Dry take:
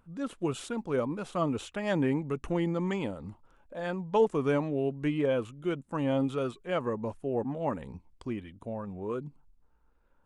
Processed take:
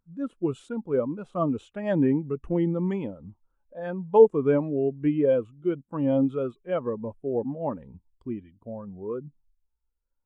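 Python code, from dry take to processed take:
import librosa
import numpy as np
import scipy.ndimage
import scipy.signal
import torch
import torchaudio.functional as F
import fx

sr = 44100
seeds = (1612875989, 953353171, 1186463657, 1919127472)

y = fx.spectral_expand(x, sr, expansion=1.5)
y = y * 10.0 ** (9.0 / 20.0)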